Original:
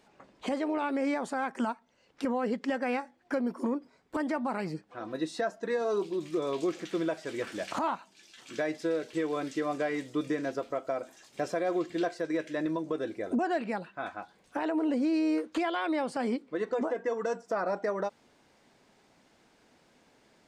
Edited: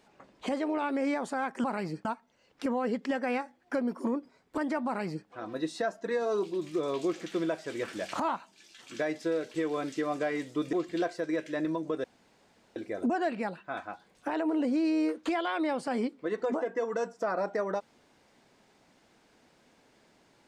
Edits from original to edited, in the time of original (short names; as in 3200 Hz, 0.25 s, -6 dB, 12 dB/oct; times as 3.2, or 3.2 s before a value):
4.45–4.86 copy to 1.64
10.32–11.74 cut
13.05 insert room tone 0.72 s